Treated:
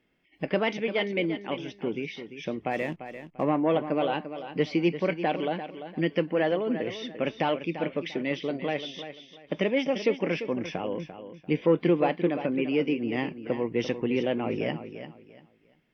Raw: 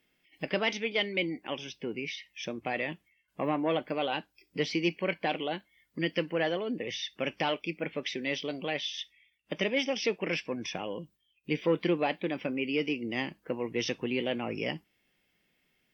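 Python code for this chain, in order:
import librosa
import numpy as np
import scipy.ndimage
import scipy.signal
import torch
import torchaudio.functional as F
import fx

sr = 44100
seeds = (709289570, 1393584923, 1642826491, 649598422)

y = fx.lowpass(x, sr, hz=1200.0, slope=6)
y = fx.backlash(y, sr, play_db=-50.0, at=(2.7, 3.43), fade=0.02)
y = fx.echo_feedback(y, sr, ms=344, feedback_pct=26, wet_db=-11.0)
y = y * 10.0 ** (5.5 / 20.0)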